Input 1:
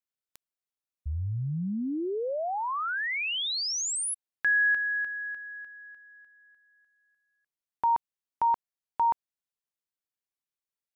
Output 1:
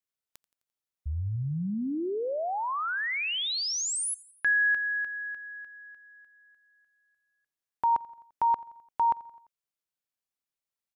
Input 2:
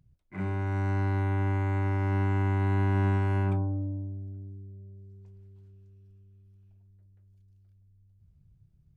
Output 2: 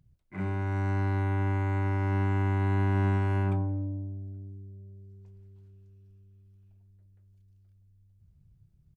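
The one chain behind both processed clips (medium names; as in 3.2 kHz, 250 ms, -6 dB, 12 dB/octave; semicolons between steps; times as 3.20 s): feedback delay 86 ms, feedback 58%, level -22 dB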